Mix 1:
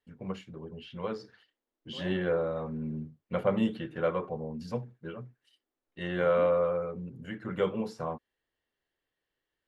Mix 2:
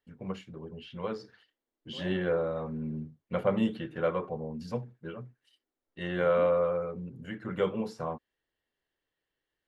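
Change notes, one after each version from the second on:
second voice: add running mean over 16 samples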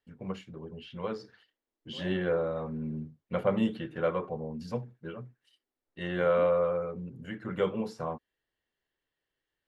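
reverb: off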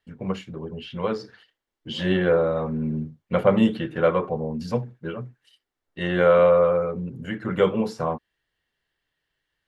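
first voice +9.0 dB

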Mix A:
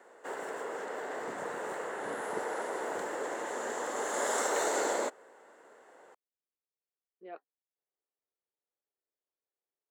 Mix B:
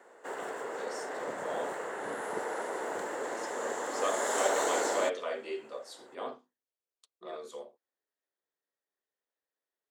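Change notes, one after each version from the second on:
first voice: unmuted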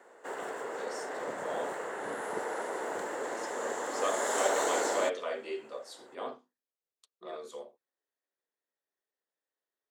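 none

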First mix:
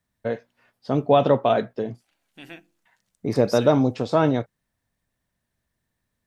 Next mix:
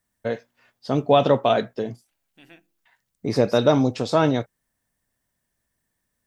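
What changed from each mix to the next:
first voice: add high shelf 3500 Hz +10.5 dB; second voice -8.0 dB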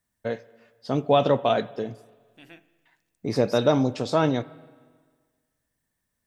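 first voice -3.5 dB; reverb: on, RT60 1.6 s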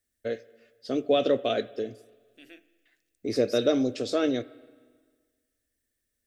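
master: add fixed phaser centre 380 Hz, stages 4

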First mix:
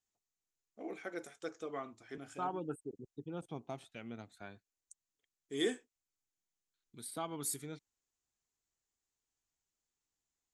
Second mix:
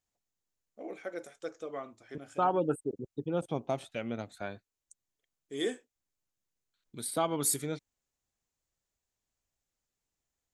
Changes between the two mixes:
second voice +9.0 dB; master: add bell 560 Hz +8 dB 0.37 oct

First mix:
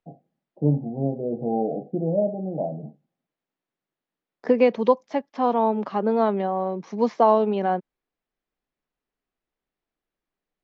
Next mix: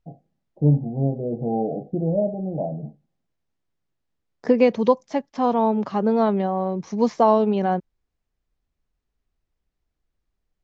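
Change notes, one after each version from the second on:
second voice: add low shelf 120 Hz +11.5 dB; master: remove three-band isolator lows -15 dB, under 150 Hz, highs -13 dB, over 4400 Hz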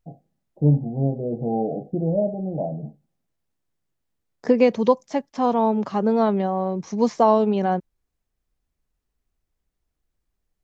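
second voice: remove LPF 5700 Hz 12 dB/oct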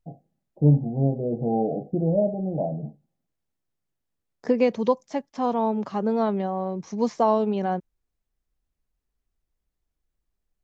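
second voice -4.0 dB

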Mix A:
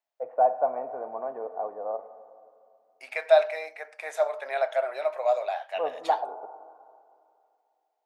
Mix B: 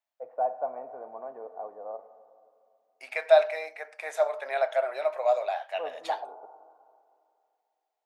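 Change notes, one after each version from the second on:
first voice -6.5 dB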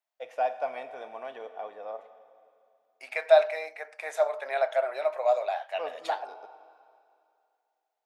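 first voice: remove LPF 1100 Hz 24 dB/oct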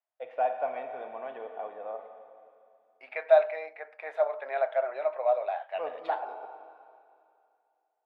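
first voice: send +6.5 dB; master: add air absorption 430 m

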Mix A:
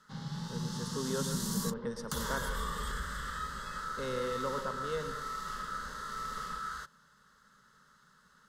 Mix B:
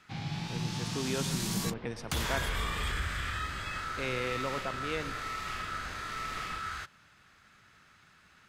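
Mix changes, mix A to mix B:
speech: send -8.0 dB; master: remove fixed phaser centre 480 Hz, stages 8

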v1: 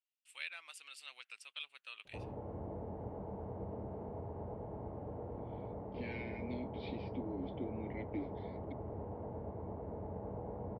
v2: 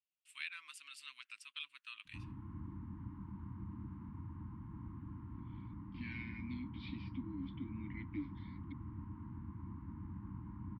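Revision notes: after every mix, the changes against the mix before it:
master: add Chebyshev band-stop 310–1000 Hz, order 4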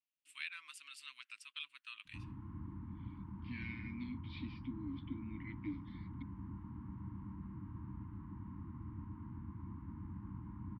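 second voice: entry -2.50 s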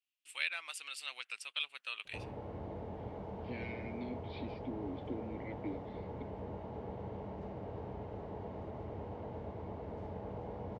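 first voice +8.0 dB; background: remove LPF 1100 Hz 12 dB/oct; master: remove Chebyshev band-stop 310–1000 Hz, order 4

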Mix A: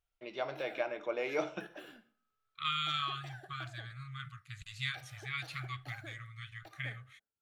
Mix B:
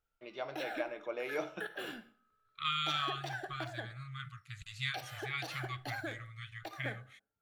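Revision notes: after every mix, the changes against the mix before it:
first voice -3.5 dB; background +10.5 dB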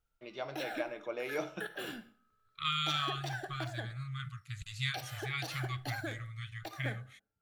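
master: add tone controls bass +6 dB, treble +5 dB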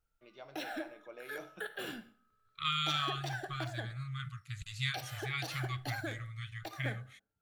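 first voice -11.0 dB

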